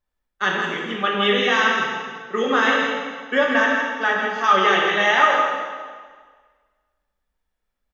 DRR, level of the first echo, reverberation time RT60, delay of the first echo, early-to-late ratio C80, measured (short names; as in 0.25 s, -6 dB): -3.5 dB, -6.0 dB, 1.6 s, 0.163 s, 1.0 dB